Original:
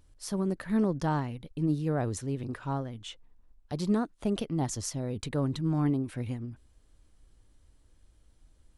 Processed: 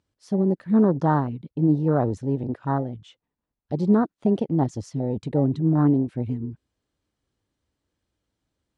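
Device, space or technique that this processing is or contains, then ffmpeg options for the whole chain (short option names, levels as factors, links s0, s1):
over-cleaned archive recording: -af "highpass=120,lowpass=6300,afwtdn=0.02,volume=2.82"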